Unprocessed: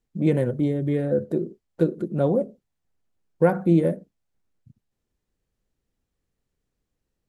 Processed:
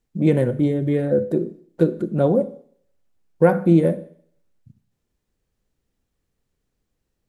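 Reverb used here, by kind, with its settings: Schroeder reverb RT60 0.6 s, combs from 30 ms, DRR 14.5 dB; trim +3.5 dB

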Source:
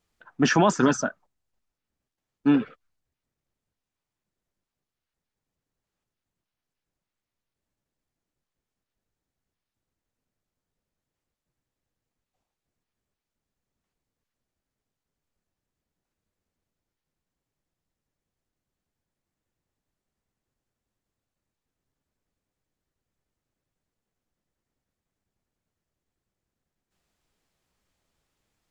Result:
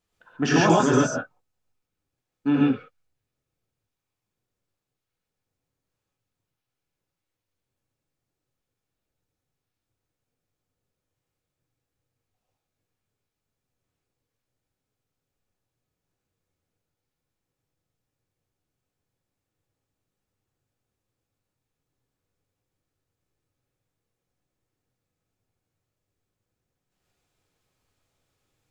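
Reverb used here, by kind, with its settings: gated-style reverb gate 160 ms rising, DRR -4.5 dB; trim -4 dB

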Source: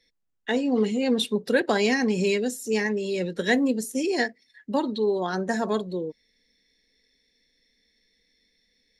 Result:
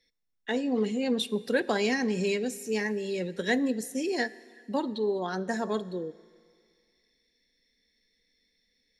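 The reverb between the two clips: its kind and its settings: Schroeder reverb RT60 2 s, combs from 27 ms, DRR 18.5 dB; trim -4.5 dB

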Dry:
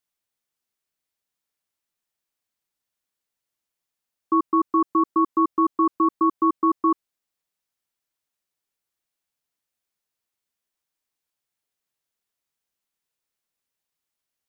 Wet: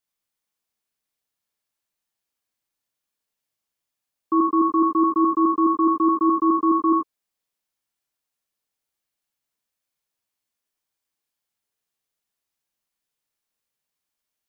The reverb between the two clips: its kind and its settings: gated-style reverb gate 110 ms rising, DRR 2 dB; trim -1.5 dB

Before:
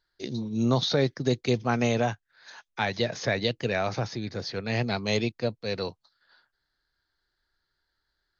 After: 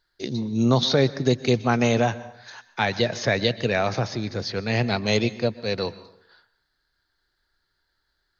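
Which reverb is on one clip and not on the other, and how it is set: plate-style reverb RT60 0.7 s, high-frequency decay 0.75×, pre-delay 110 ms, DRR 16 dB; trim +4.5 dB

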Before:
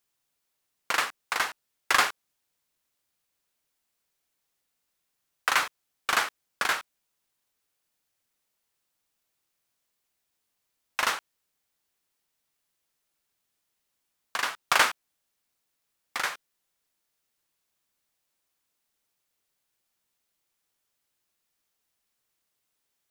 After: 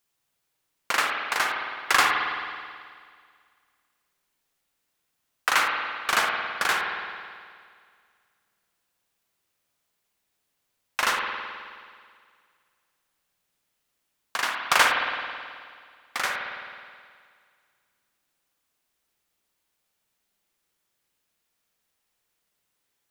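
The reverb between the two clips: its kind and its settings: spring tank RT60 2 s, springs 53 ms, chirp 50 ms, DRR 1 dB; trim +1.5 dB

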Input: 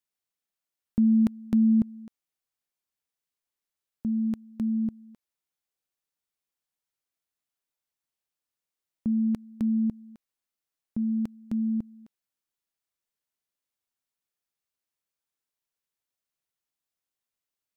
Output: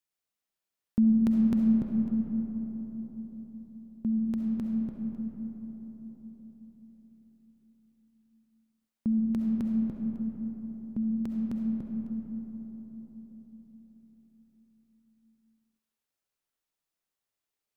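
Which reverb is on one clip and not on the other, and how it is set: algorithmic reverb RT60 4.8 s, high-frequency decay 0.3×, pre-delay 25 ms, DRR 0.5 dB; trim -1 dB

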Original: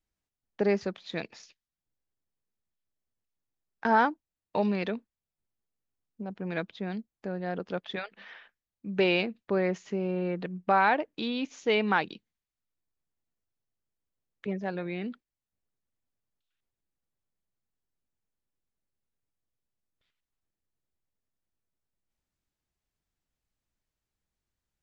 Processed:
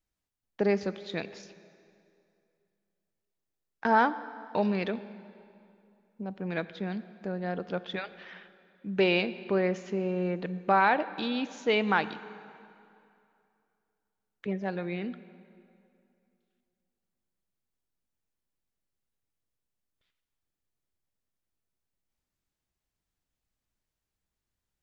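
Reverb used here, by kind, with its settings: plate-style reverb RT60 2.6 s, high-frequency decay 0.8×, DRR 14 dB

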